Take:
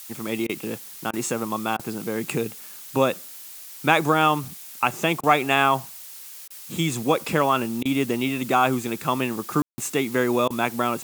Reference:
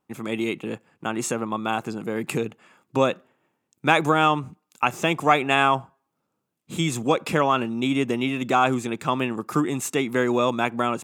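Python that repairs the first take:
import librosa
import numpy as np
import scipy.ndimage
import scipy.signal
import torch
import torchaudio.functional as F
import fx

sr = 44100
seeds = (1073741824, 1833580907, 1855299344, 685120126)

y = fx.fix_ambience(x, sr, seeds[0], print_start_s=6.05, print_end_s=6.55, start_s=9.62, end_s=9.78)
y = fx.fix_interpolate(y, sr, at_s=(0.47, 1.11, 1.77, 5.21, 6.48, 7.83, 10.48), length_ms=22.0)
y = fx.noise_reduce(y, sr, print_start_s=6.05, print_end_s=6.55, reduce_db=30.0)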